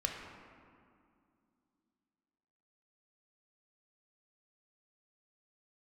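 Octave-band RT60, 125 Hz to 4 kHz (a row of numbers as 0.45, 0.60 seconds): 2.7, 3.5, 2.4, 2.3, 1.8, 1.3 seconds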